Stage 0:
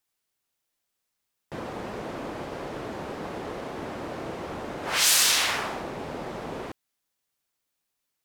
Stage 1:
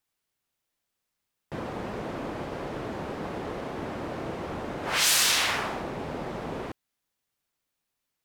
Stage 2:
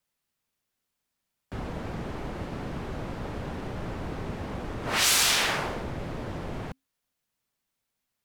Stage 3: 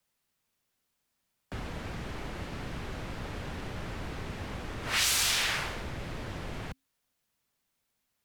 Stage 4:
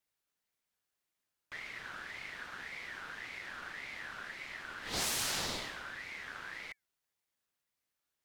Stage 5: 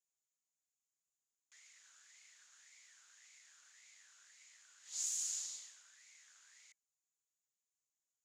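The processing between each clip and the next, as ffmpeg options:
-af "bass=f=250:g=3,treble=f=4000:g=-3"
-af "afreqshift=-270"
-filter_complex "[0:a]acrossover=split=110|1500[s0][s1][s2];[s0]acompressor=threshold=0.00891:ratio=4[s3];[s1]acompressor=threshold=0.00631:ratio=4[s4];[s2]acompressor=threshold=0.0398:ratio=4[s5];[s3][s4][s5]amix=inputs=3:normalize=0,volume=1.33"
-af "aeval=exprs='val(0)*sin(2*PI*1800*n/s+1800*0.2/1.8*sin(2*PI*1.8*n/s))':c=same,volume=0.596"
-af "bandpass=f=6900:t=q:w=9.2:csg=0,volume=2.11"

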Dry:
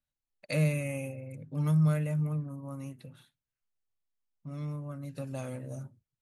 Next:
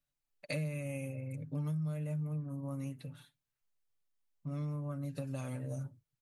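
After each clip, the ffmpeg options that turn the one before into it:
-af "aecho=1:1:6.9:0.5,acompressor=threshold=0.0178:ratio=6"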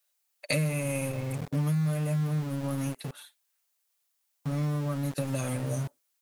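-filter_complex "[0:a]highshelf=f=5000:g=9.5,acrossover=split=450|3900[s0][s1][s2];[s0]aeval=exprs='val(0)*gte(abs(val(0)),0.00631)':c=same[s3];[s3][s1][s2]amix=inputs=3:normalize=0,volume=2.66"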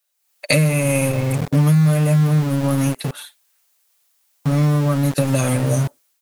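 -af "dynaudnorm=f=100:g=5:m=3.55,volume=1.26"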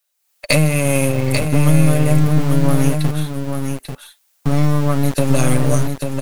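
-af "aeval=exprs='0.891*(cos(1*acos(clip(val(0)/0.891,-1,1)))-cos(1*PI/2))+0.0631*(cos(8*acos(clip(val(0)/0.891,-1,1)))-cos(8*PI/2))':c=same,asubboost=boost=2:cutoff=65,aecho=1:1:841:0.501,volume=1.12"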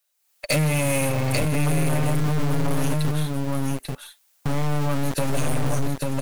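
-af "volume=5.96,asoftclip=hard,volume=0.168,volume=0.841"

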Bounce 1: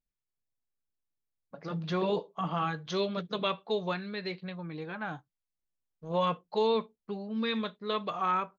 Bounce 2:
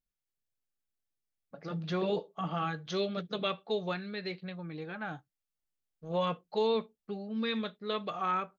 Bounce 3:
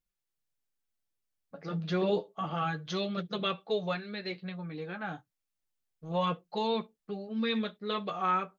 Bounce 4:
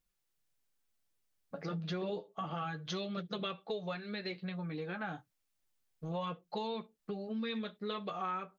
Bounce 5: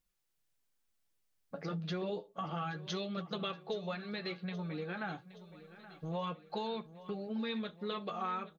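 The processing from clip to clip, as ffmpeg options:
-af "bandreject=f=1000:w=5.5,volume=0.841"
-af "flanger=delay=5.7:depth=5.2:regen=-30:speed=0.3:shape=sinusoidal,volume=1.78"
-af "acompressor=threshold=0.00794:ratio=4,volume=1.68"
-af "aecho=1:1:823|1646|2469|3292|4115:0.158|0.0872|0.0479|0.0264|0.0145"

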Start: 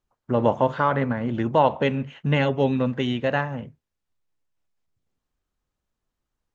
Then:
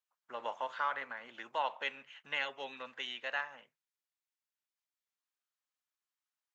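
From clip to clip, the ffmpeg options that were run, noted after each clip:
-af "highpass=1300,volume=0.473"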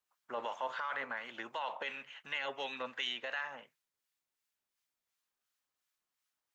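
-filter_complex "[0:a]alimiter=level_in=2.82:limit=0.0631:level=0:latency=1:release=19,volume=0.355,acrossover=split=1200[s0][s1];[s0]aeval=exprs='val(0)*(1-0.5/2+0.5/2*cos(2*PI*2.8*n/s))':c=same[s2];[s1]aeval=exprs='val(0)*(1-0.5/2-0.5/2*cos(2*PI*2.8*n/s))':c=same[s3];[s2][s3]amix=inputs=2:normalize=0,volume=2.37"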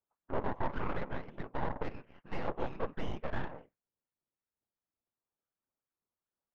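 -af "afftfilt=real='hypot(re,im)*cos(2*PI*random(0))':imag='hypot(re,im)*sin(2*PI*random(1))':win_size=512:overlap=0.75,aeval=exprs='0.0282*(cos(1*acos(clip(val(0)/0.0282,-1,1)))-cos(1*PI/2))+0.01*(cos(6*acos(clip(val(0)/0.0282,-1,1)))-cos(6*PI/2))':c=same,adynamicsmooth=sensitivity=1:basefreq=770,volume=3.35"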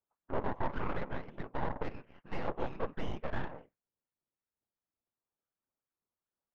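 -af anull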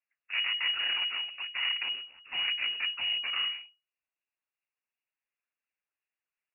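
-af "lowpass=f=2500:t=q:w=0.5098,lowpass=f=2500:t=q:w=0.6013,lowpass=f=2500:t=q:w=0.9,lowpass=f=2500:t=q:w=2.563,afreqshift=-2900,volume=1.26"

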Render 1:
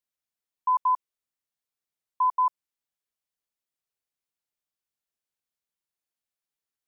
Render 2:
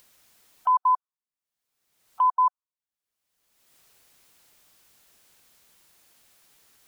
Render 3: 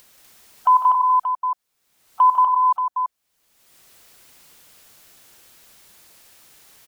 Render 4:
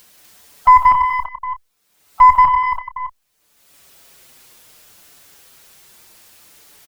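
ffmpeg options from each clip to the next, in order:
-af "afftdn=nr=20:nf=-46,acompressor=mode=upward:threshold=0.0447:ratio=2.5,volume=1.33"
-af "aecho=1:1:91|152|179|246|580:0.237|0.355|0.447|0.708|0.355,volume=2.11"
-filter_complex "[0:a]aeval=exprs='0.422*(cos(1*acos(clip(val(0)/0.422,-1,1)))-cos(1*PI/2))+0.106*(cos(2*acos(clip(val(0)/0.422,-1,1)))-cos(2*PI/2))+0.00473*(cos(7*acos(clip(val(0)/0.422,-1,1)))-cos(7*PI/2))':c=same,asplit=2[s0][s1];[s1]adelay=29,volume=0.251[s2];[s0][s2]amix=inputs=2:normalize=0,asplit=2[s3][s4];[s4]adelay=6.1,afreqshift=-0.64[s5];[s3][s5]amix=inputs=2:normalize=1,volume=2.24"

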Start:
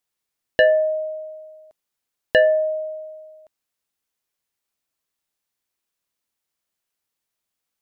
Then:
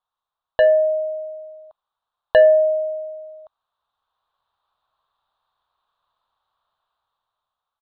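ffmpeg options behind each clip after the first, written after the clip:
-af "firequalizer=gain_entry='entry(120,0);entry(290,-7);entry(650,6);entry(1100,13);entry(2100,-17);entry(3700,1);entry(5500,-30)':delay=0.05:min_phase=1,dynaudnorm=f=350:g=7:m=3.76,equalizer=f=240:w=0.58:g=-9"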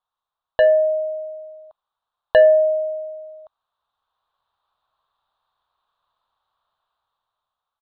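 -af anull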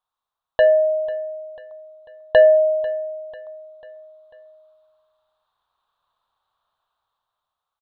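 -af "aecho=1:1:494|988|1482|1976:0.126|0.0642|0.0327|0.0167"

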